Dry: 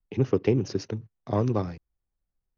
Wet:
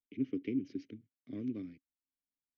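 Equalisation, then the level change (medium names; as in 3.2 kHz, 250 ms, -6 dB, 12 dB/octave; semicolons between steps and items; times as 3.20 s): vowel filter i; bass shelf 79 Hz +6 dB; -2.5 dB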